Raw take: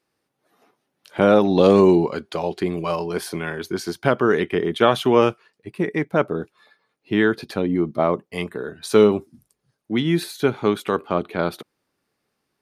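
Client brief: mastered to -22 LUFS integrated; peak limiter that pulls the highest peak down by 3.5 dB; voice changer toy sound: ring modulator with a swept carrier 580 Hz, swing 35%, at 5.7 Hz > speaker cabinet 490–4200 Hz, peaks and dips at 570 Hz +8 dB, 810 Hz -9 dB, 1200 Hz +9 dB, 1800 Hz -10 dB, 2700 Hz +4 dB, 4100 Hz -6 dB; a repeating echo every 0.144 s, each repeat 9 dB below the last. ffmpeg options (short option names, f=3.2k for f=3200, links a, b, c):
-af "alimiter=limit=-6dB:level=0:latency=1,aecho=1:1:144|288|432|576:0.355|0.124|0.0435|0.0152,aeval=exprs='val(0)*sin(2*PI*580*n/s+580*0.35/5.7*sin(2*PI*5.7*n/s))':c=same,highpass=490,equalizer=f=570:t=q:w=4:g=8,equalizer=f=810:t=q:w=4:g=-9,equalizer=f=1.2k:t=q:w=4:g=9,equalizer=f=1.8k:t=q:w=4:g=-10,equalizer=f=2.7k:t=q:w=4:g=4,equalizer=f=4.1k:t=q:w=4:g=-6,lowpass=f=4.2k:w=0.5412,lowpass=f=4.2k:w=1.3066,volume=2dB"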